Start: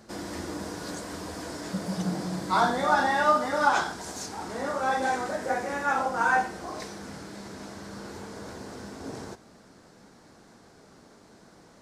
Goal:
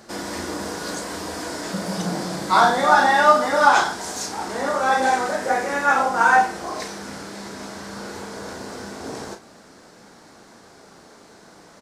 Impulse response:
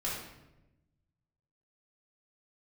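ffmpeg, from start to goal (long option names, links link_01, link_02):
-filter_complex "[0:a]lowshelf=frequency=260:gain=-8.5,asplit=2[link_01][link_02];[link_02]adelay=35,volume=-8dB[link_03];[link_01][link_03]amix=inputs=2:normalize=0,volume=8dB"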